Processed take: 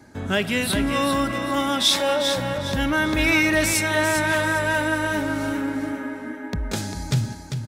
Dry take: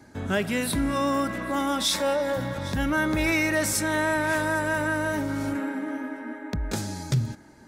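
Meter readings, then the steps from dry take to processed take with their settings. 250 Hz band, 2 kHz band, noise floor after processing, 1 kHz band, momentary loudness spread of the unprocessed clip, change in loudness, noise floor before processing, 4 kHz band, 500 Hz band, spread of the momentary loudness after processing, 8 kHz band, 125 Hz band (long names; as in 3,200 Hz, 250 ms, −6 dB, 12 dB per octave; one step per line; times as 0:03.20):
+3.0 dB, +5.0 dB, −36 dBFS, +3.0 dB, 9 LU, +4.0 dB, −50 dBFS, +8.0 dB, +3.0 dB, 11 LU, +3.5 dB, +3.0 dB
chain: dynamic equaliser 3,100 Hz, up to +7 dB, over −44 dBFS, Q 1.4
repeating echo 397 ms, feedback 24%, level −7 dB
level +2 dB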